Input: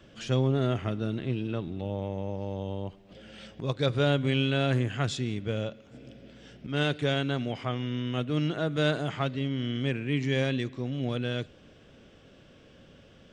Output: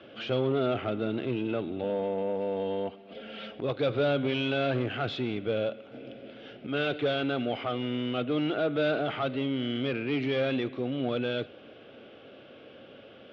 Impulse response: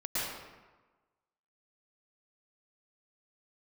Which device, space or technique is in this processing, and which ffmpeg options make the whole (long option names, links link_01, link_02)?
overdrive pedal into a guitar cabinet: -filter_complex "[0:a]asettb=1/sr,asplit=3[link_01][link_02][link_03];[link_01]atrim=end=1.834[link_04];[link_02]atrim=start=1.83:end=3.57,asetpts=PTS-STARTPTS,afade=type=in:duration=0.004:curve=qsin,afade=type=out:start_time=1.736:duration=0.004:curve=qsin,aecho=1:1:4.4:0.6,atrim=end_sample=76734[link_05];[link_03]atrim=start=3.566[link_06];[link_04][link_05]acrossfade=duration=0.004:curve1=hsin:curve2=qsin[link_07];[link_07][link_06]acrossfade=duration=0.004:curve1=qsin:curve2=hsin,asplit=2[link_08][link_09];[link_09]highpass=frequency=720:poles=1,volume=22dB,asoftclip=type=tanh:threshold=-13.5dB[link_10];[link_08][link_10]amix=inputs=2:normalize=0,lowpass=frequency=1400:poles=1,volume=-6dB,highpass=100,equalizer=frequency=170:width_type=q:width=4:gain=-9,equalizer=frequency=1000:width_type=q:width=4:gain=-9,equalizer=frequency=1800:width_type=q:width=4:gain=-8,lowpass=frequency=3900:width=0.5412,lowpass=frequency=3900:width=1.3066,volume=-2.5dB"